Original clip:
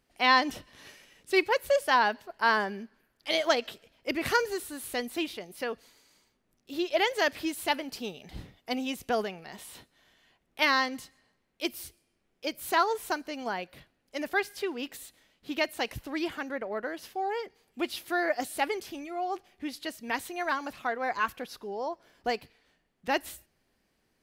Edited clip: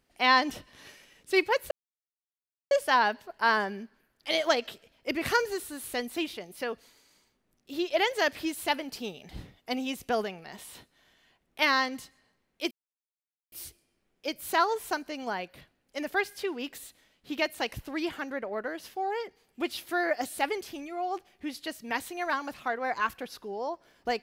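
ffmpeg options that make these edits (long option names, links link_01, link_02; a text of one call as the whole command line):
ffmpeg -i in.wav -filter_complex "[0:a]asplit=3[link_01][link_02][link_03];[link_01]atrim=end=1.71,asetpts=PTS-STARTPTS,afade=type=out:start_time=1.706:duration=0.004:curve=hsin,apad=pad_dur=1[link_04];[link_02]atrim=start=1.71:end=11.71,asetpts=PTS-STARTPTS,afade=type=in:duration=0.004:curve=hsin,afade=type=out:start_time=9.996:duration=0.004:curve=hsin,apad=pad_dur=0.81[link_05];[link_03]atrim=start=11.71,asetpts=PTS-STARTPTS,afade=type=in:duration=0.004:curve=hsin[link_06];[link_04][link_05][link_06]concat=n=3:v=0:a=1" out.wav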